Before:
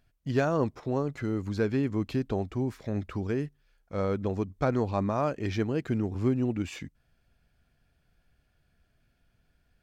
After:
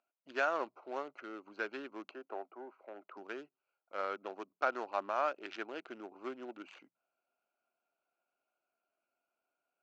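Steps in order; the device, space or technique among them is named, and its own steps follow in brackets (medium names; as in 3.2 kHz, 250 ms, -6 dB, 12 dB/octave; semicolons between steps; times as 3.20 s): local Wiener filter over 25 samples; hum notches 60/120/180 Hz; 2.11–3.17 s: three-band isolator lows -13 dB, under 280 Hz, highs -15 dB, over 2.2 kHz; phone speaker on a table (cabinet simulation 430–6500 Hz, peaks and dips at 460 Hz -10 dB, 1.4 kHz +9 dB, 2.7 kHz +6 dB); trim -3.5 dB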